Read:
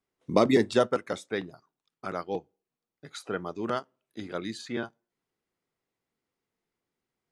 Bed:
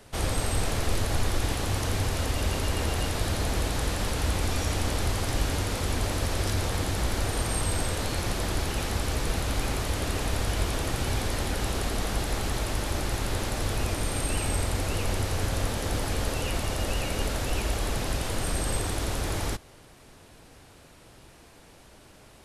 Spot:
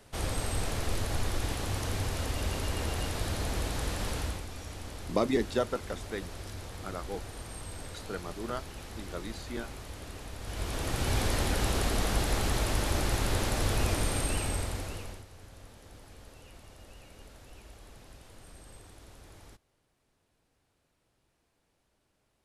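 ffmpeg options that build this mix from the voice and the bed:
-filter_complex "[0:a]adelay=4800,volume=0.501[s0];[1:a]volume=2.99,afade=t=out:st=4.16:d=0.29:silence=0.334965,afade=t=in:st=10.4:d=0.82:silence=0.188365,afade=t=out:st=13.96:d=1.29:silence=0.0707946[s1];[s0][s1]amix=inputs=2:normalize=0"

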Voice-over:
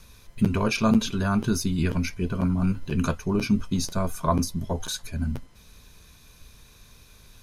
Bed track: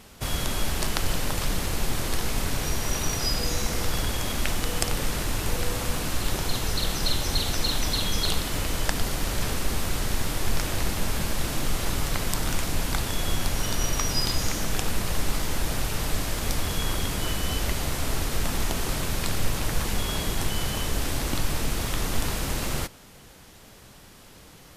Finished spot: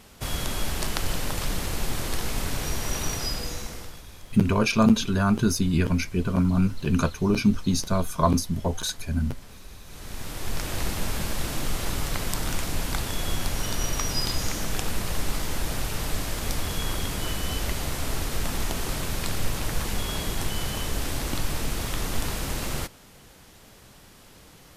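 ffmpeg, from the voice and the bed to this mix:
-filter_complex "[0:a]adelay=3950,volume=1.26[s0];[1:a]volume=7.5,afade=t=out:st=3.08:d=0.94:silence=0.112202,afade=t=in:st=9.85:d=0.98:silence=0.112202[s1];[s0][s1]amix=inputs=2:normalize=0"

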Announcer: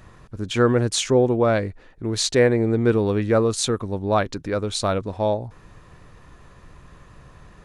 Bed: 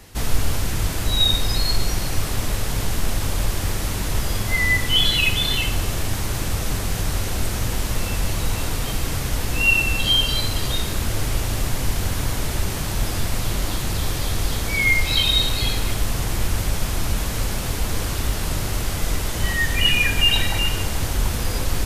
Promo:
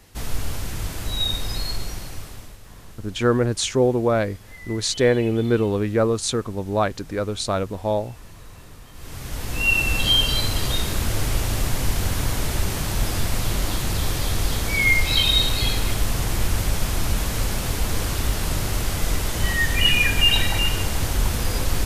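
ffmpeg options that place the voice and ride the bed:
-filter_complex "[0:a]adelay=2650,volume=0.891[s0];[1:a]volume=5.96,afade=t=out:st=1.6:d=0.98:silence=0.16788,afade=t=in:st=8.93:d=1.05:silence=0.0841395[s1];[s0][s1]amix=inputs=2:normalize=0"

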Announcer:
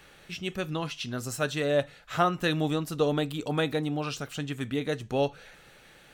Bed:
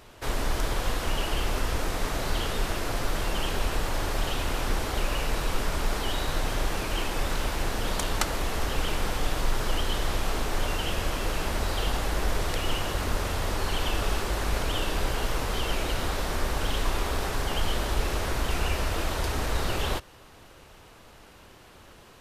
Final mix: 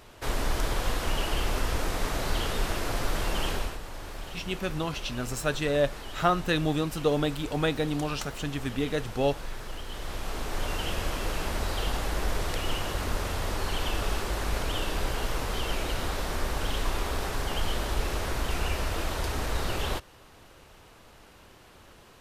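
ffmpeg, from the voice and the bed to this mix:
-filter_complex "[0:a]adelay=4050,volume=1.06[s0];[1:a]volume=2.82,afade=t=out:st=3.5:d=0.28:silence=0.281838,afade=t=in:st=9.86:d=0.96:silence=0.334965[s1];[s0][s1]amix=inputs=2:normalize=0"

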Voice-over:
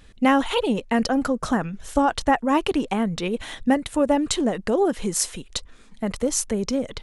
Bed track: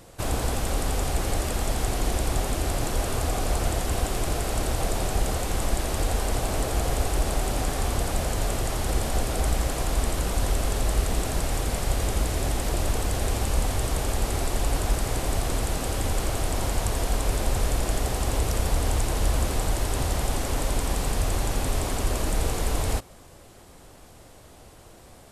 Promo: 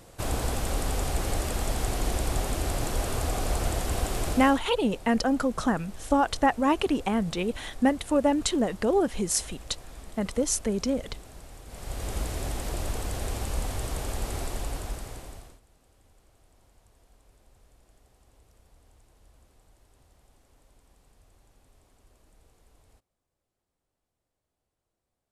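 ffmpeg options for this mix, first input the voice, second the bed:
-filter_complex "[0:a]adelay=4150,volume=0.708[s0];[1:a]volume=3.76,afade=t=out:st=4.28:d=0.34:silence=0.133352,afade=t=in:st=11.66:d=0.51:silence=0.199526,afade=t=out:st=14.41:d=1.19:silence=0.0334965[s1];[s0][s1]amix=inputs=2:normalize=0"

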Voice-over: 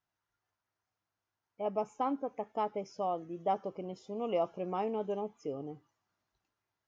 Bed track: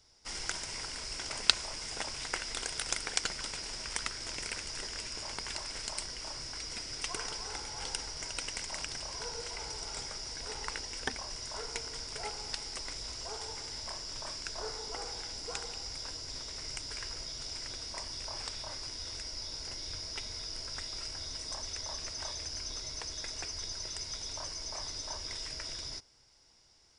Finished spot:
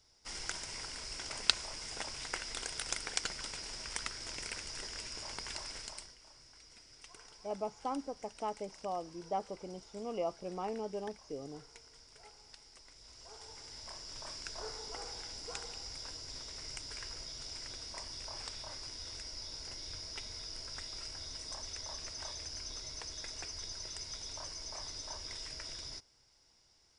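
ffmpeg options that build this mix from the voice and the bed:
-filter_complex "[0:a]adelay=5850,volume=0.596[s0];[1:a]volume=3.16,afade=t=out:st=5.68:d=0.49:silence=0.199526,afade=t=in:st=12.94:d=1.47:silence=0.211349[s1];[s0][s1]amix=inputs=2:normalize=0"

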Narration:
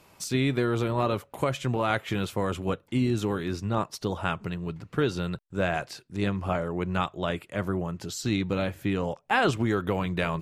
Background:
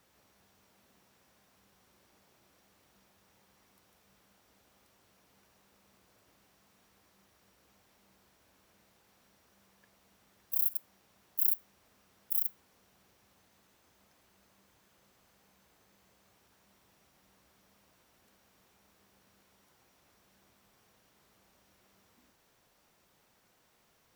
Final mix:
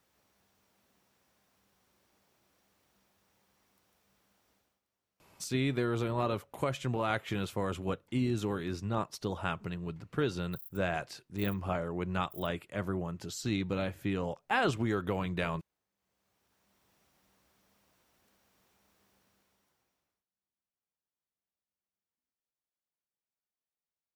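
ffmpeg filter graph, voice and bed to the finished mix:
-filter_complex "[0:a]adelay=5200,volume=0.531[s0];[1:a]volume=3.76,afade=t=out:st=4.51:d=0.3:silence=0.177828,afade=t=in:st=15.95:d=1:silence=0.149624,afade=t=out:st=19.1:d=1.15:silence=0.0316228[s1];[s0][s1]amix=inputs=2:normalize=0"

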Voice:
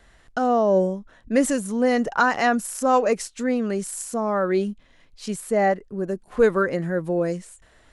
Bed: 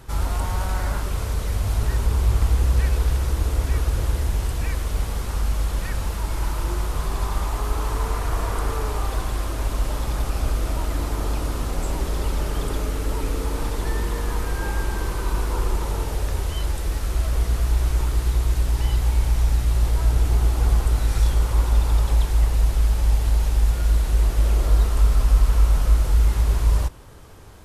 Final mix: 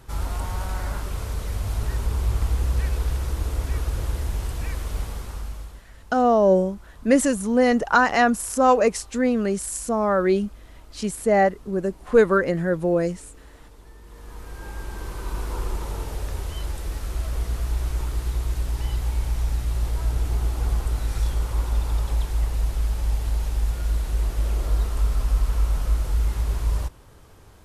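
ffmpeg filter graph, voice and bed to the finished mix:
-filter_complex "[0:a]adelay=5750,volume=1.26[s0];[1:a]volume=4.73,afade=t=out:st=4.97:d=0.87:silence=0.11885,afade=t=in:st=14.02:d=1.49:silence=0.133352[s1];[s0][s1]amix=inputs=2:normalize=0"

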